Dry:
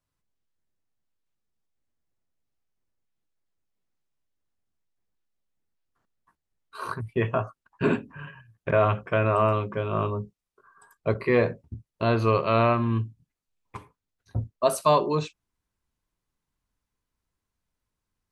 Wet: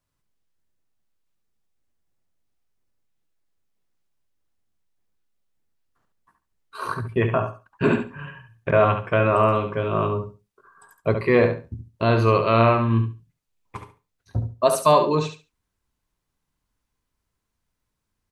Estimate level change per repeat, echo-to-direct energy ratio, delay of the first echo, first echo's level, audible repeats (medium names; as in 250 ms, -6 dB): -14.5 dB, -8.0 dB, 70 ms, -8.0 dB, 2